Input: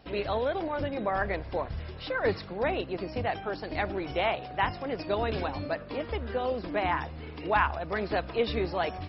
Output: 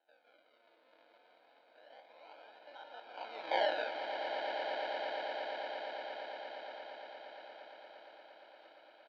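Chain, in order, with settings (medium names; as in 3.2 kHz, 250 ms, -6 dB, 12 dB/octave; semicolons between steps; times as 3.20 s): spectrogram pixelated in time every 100 ms; Doppler pass-by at 3.56 s, 53 m/s, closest 5.2 m; peaking EQ 870 Hz -8.5 dB 2.8 oct; delay 170 ms -4 dB; decimation with a swept rate 38×, swing 100% 0.27 Hz; Chebyshev band-pass 340–4200 Hz, order 4; comb 1.3 ms, depth 99%; on a send: echo with a slow build-up 116 ms, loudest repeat 8, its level -10.5 dB; on the sum: trim +5 dB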